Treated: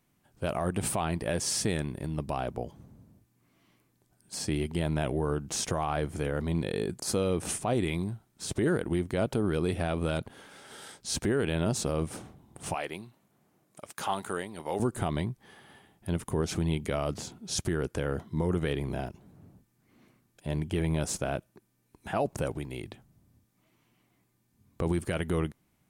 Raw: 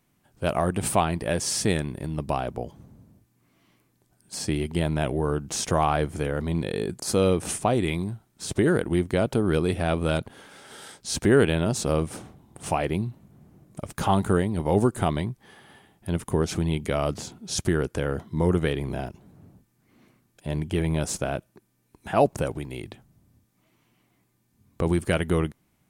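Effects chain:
0:12.74–0:14.80: high-pass filter 930 Hz 6 dB per octave
brickwall limiter −15.5 dBFS, peak gain reduction 8 dB
level −3 dB

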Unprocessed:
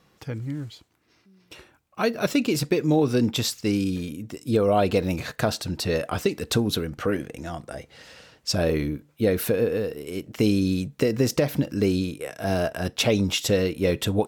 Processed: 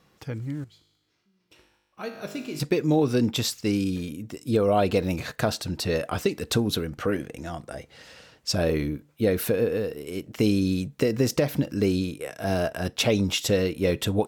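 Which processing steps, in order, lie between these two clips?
0:00.64–0:02.60: tuned comb filter 51 Hz, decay 1.2 s, harmonics all, mix 80%
level −1 dB

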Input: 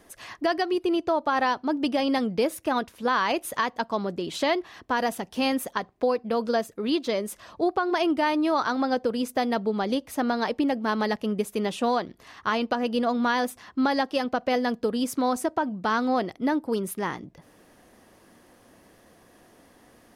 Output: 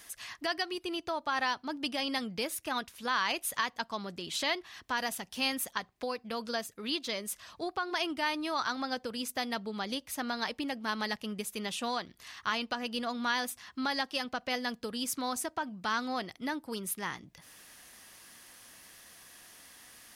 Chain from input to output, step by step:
guitar amp tone stack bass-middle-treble 5-5-5
one half of a high-frequency compander encoder only
level +7 dB

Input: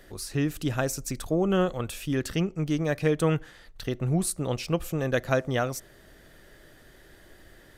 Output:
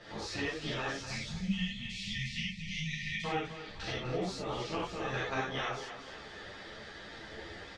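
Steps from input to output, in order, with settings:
ceiling on every frequency bin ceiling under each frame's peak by 18 dB
low-pass filter 5,500 Hz 24 dB per octave
time-frequency box erased 0:00.91–0:03.25, 240–1,800 Hz
downward compressor 2.5 to 1, threshold −43 dBFS, peak gain reduction 16 dB
on a send: repeating echo 249 ms, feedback 45%, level −11 dB
on the sum: reverb whose tail is shaped and stops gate 120 ms flat, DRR −7.5 dB
string-ensemble chorus

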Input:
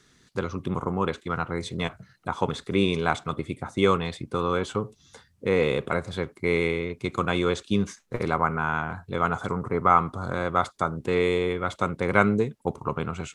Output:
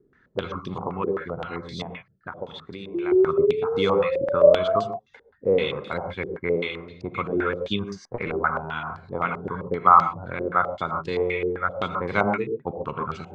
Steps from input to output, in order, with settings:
reverb reduction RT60 0.87 s
0:01.82–0:03.12: downward compressor 6 to 1, threshold −33 dBFS, peak gain reduction 15 dB
0:02.94–0:04.84: sound drawn into the spectrogram rise 340–700 Hz −23 dBFS
reverb whose tail is shaped and stops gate 160 ms rising, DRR 4.5 dB
low-pass on a step sequencer 7.7 Hz 400–4,700 Hz
level −3.5 dB

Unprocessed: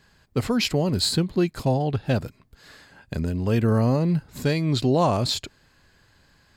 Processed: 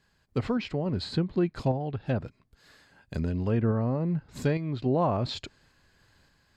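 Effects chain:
treble cut that deepens with the level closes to 1,800 Hz, closed at −17.5 dBFS
sample-and-hold tremolo
level −3 dB

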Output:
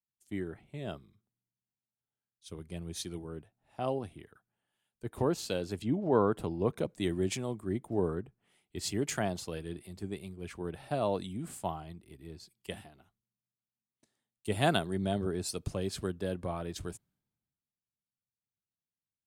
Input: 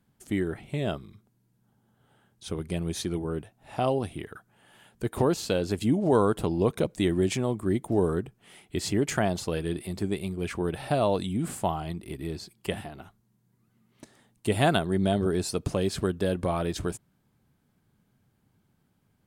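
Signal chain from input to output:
0:05.82–0:06.32: low-pass filter 4,800 Hz 12 dB per octave
multiband upward and downward expander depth 70%
level −8 dB

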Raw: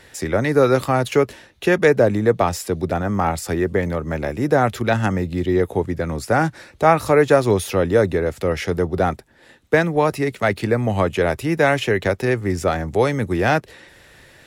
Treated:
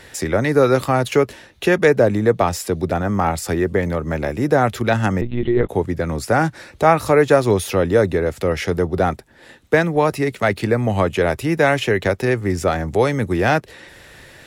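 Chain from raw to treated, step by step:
in parallel at −3 dB: downward compressor, threshold −31 dBFS, peak gain reduction 20.5 dB
0:05.21–0:05.69: on the sum: one-pitch LPC vocoder at 8 kHz 120 Hz

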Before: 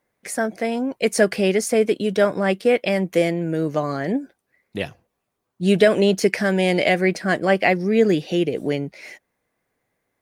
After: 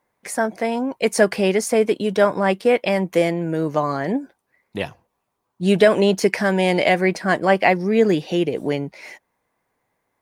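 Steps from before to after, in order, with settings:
parametric band 950 Hz +9 dB 0.57 octaves

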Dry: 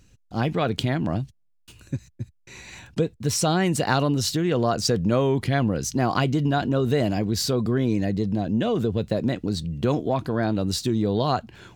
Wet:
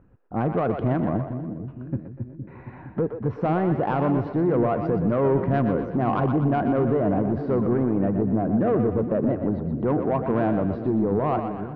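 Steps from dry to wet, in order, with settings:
low-pass filter 1,300 Hz 24 dB per octave
low-shelf EQ 140 Hz −8.5 dB
brickwall limiter −18 dBFS, peak gain reduction 7 dB
soft clipping −20.5 dBFS, distortion −18 dB
on a send: echo with a time of its own for lows and highs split 370 Hz, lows 463 ms, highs 122 ms, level −7.5 dB
on the sum: level +5.5 dB

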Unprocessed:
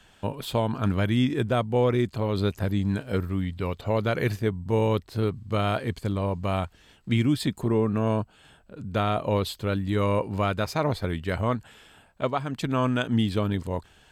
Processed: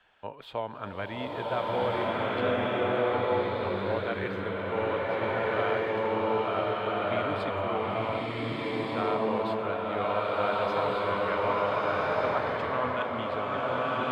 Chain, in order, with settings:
three-way crossover with the lows and the highs turned down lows −15 dB, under 440 Hz, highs −24 dB, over 3,200 Hz
slow-attack reverb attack 1,500 ms, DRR −7.5 dB
level −4.5 dB

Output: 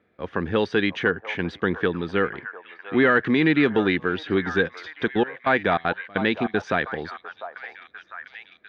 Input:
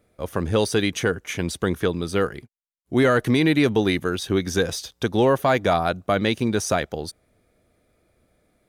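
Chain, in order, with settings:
loudspeaker in its box 110–3,400 Hz, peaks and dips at 120 Hz −9 dB, 600 Hz −6 dB, 1,700 Hz +7 dB
0:04.67–0:06.62: gate pattern "xxx.x...x" 195 BPM −24 dB
echo through a band-pass that steps 700 ms, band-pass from 850 Hz, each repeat 0.7 octaves, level −8 dB

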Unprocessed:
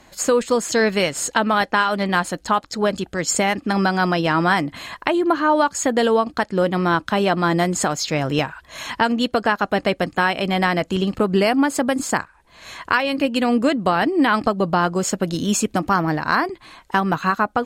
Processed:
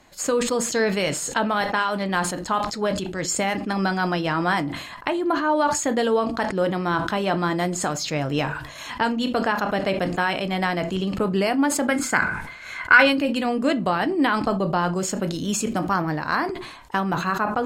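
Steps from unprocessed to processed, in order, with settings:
0:11.87–0:13.00: hollow resonant body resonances 1,500/2,100 Hz, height 16 dB, ringing for 20 ms
convolution reverb RT60 0.35 s, pre-delay 7 ms, DRR 11 dB
level that may fall only so fast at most 59 dB per second
level −5 dB

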